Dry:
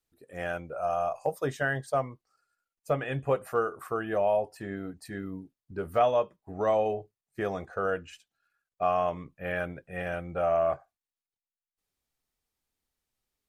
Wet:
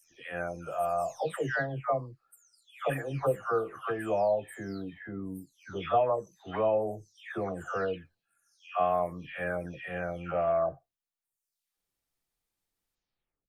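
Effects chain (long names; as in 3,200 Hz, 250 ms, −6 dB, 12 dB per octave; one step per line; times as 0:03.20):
every frequency bin delayed by itself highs early, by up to 533 ms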